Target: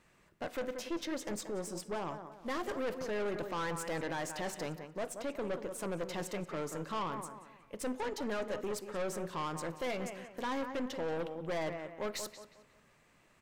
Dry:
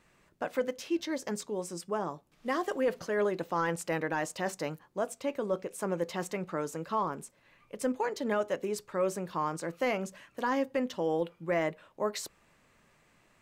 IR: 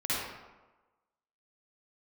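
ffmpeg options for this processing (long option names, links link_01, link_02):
-filter_complex "[0:a]asplit=2[link_01][link_02];[link_02]adelay=181,lowpass=frequency=4000:poles=1,volume=-12dB,asplit=2[link_03][link_04];[link_04]adelay=181,lowpass=frequency=4000:poles=1,volume=0.36,asplit=2[link_05][link_06];[link_06]adelay=181,lowpass=frequency=4000:poles=1,volume=0.36,asplit=2[link_07][link_08];[link_08]adelay=181,lowpass=frequency=4000:poles=1,volume=0.36[link_09];[link_01][link_03][link_05][link_07][link_09]amix=inputs=5:normalize=0,aeval=exprs='(tanh(44.7*val(0)+0.45)-tanh(0.45))/44.7':channel_layout=same,asplit=2[link_10][link_11];[1:a]atrim=start_sample=2205,asetrate=52920,aresample=44100[link_12];[link_11][link_12]afir=irnorm=-1:irlink=0,volume=-24dB[link_13];[link_10][link_13]amix=inputs=2:normalize=0"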